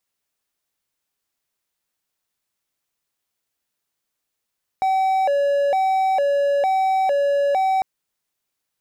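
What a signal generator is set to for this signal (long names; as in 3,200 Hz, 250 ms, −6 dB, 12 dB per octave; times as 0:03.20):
siren hi-lo 566–764 Hz 1.1 per second triangle −14 dBFS 3.00 s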